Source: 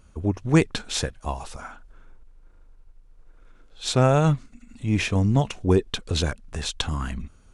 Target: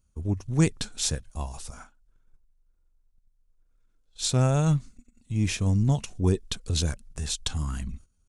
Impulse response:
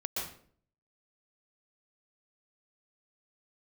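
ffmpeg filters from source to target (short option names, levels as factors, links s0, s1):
-af "atempo=0.91,bass=f=250:g=8,treble=f=4000:g=13,agate=range=0.2:threshold=0.0178:ratio=16:detection=peak,volume=0.355"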